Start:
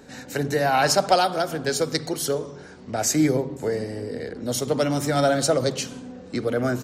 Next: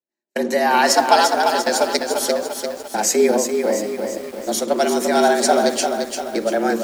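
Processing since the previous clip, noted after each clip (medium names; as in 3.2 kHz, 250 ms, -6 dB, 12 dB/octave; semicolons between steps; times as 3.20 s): frequency shift +100 Hz; gate -29 dBFS, range -54 dB; bit-crushed delay 345 ms, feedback 55%, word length 7-bit, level -5.5 dB; trim +4 dB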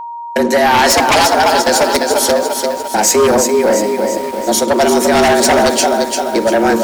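sine folder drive 11 dB, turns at -1 dBFS; whistle 940 Hz -18 dBFS; trim -5.5 dB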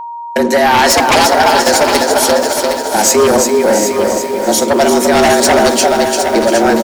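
feedback delay 762 ms, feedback 35%, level -8 dB; trim +1 dB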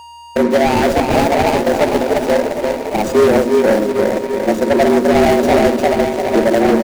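median filter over 41 samples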